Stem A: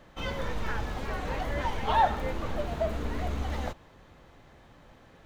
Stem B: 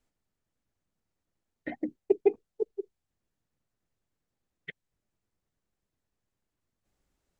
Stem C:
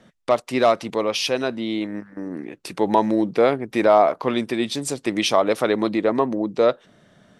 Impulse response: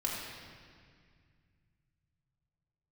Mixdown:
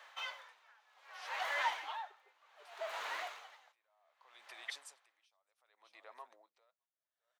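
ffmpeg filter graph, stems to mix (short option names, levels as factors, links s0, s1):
-filter_complex "[0:a]equalizer=f=2600:t=o:w=3:g=6,volume=0.794[s0];[1:a]volume=0.944[s1];[2:a]acompressor=threshold=0.0224:ratio=1.5,alimiter=limit=0.0841:level=0:latency=1:release=121,volume=0.251,asplit=2[s2][s3];[s3]volume=0.119,aecho=0:1:612:1[s4];[s0][s1][s2][s4]amix=inputs=4:normalize=0,highpass=f=750:w=0.5412,highpass=f=750:w=1.3066,aeval=exprs='val(0)*pow(10,-32*(0.5-0.5*cos(2*PI*0.65*n/s))/20)':c=same"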